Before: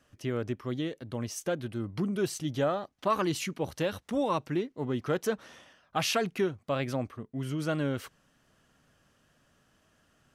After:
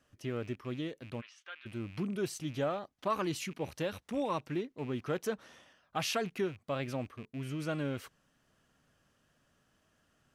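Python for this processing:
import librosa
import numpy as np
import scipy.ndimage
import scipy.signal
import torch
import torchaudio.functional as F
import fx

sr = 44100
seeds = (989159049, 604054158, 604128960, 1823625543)

y = fx.rattle_buzz(x, sr, strikes_db=-46.0, level_db=-38.0)
y = fx.cheby1_bandpass(y, sr, low_hz=1300.0, high_hz=3300.0, order=2, at=(1.2, 1.65), fade=0.02)
y = y * librosa.db_to_amplitude(-5.0)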